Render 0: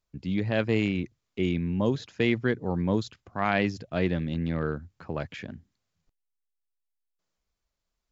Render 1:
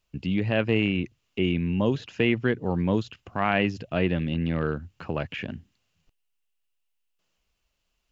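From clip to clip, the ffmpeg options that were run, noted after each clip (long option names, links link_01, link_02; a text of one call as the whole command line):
ffmpeg -i in.wav -filter_complex "[0:a]asplit=2[link_01][link_02];[link_02]acompressor=threshold=-35dB:ratio=6,volume=-0.5dB[link_03];[link_01][link_03]amix=inputs=2:normalize=0,equalizer=frequency=2800:width=4.2:gain=12.5,acrossover=split=2600[link_04][link_05];[link_05]acompressor=threshold=-44dB:ratio=4:attack=1:release=60[link_06];[link_04][link_06]amix=inputs=2:normalize=0" out.wav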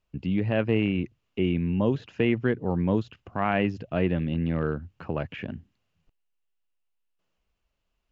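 ffmpeg -i in.wav -af "highshelf=frequency=2900:gain=-12" out.wav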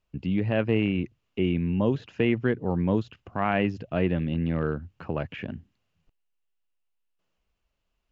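ffmpeg -i in.wav -af anull out.wav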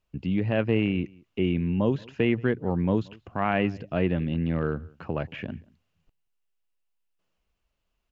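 ffmpeg -i in.wav -filter_complex "[0:a]asplit=2[link_01][link_02];[link_02]adelay=180.8,volume=-25dB,highshelf=frequency=4000:gain=-4.07[link_03];[link_01][link_03]amix=inputs=2:normalize=0" out.wav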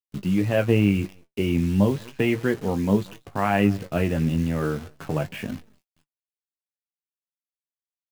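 ffmpeg -i in.wav -filter_complex "[0:a]acrusher=bits=8:dc=4:mix=0:aa=0.000001,flanger=delay=3.7:depth=9.3:regen=55:speed=0.36:shape=triangular,asplit=2[link_01][link_02];[link_02]adelay=20,volume=-10dB[link_03];[link_01][link_03]amix=inputs=2:normalize=0,volume=6.5dB" out.wav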